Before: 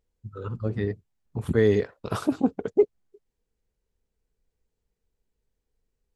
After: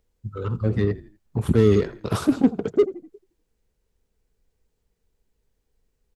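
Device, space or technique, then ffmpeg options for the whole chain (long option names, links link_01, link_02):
one-band saturation: -filter_complex "[0:a]asplit=4[link_01][link_02][link_03][link_04];[link_02]adelay=82,afreqshift=-32,volume=-19.5dB[link_05];[link_03]adelay=164,afreqshift=-64,volume=-27.2dB[link_06];[link_04]adelay=246,afreqshift=-96,volume=-35dB[link_07];[link_01][link_05][link_06][link_07]amix=inputs=4:normalize=0,acrossover=split=390|3500[link_08][link_09][link_10];[link_09]asoftclip=type=tanh:threshold=-33.5dB[link_11];[link_08][link_11][link_10]amix=inputs=3:normalize=0,volume=6.5dB"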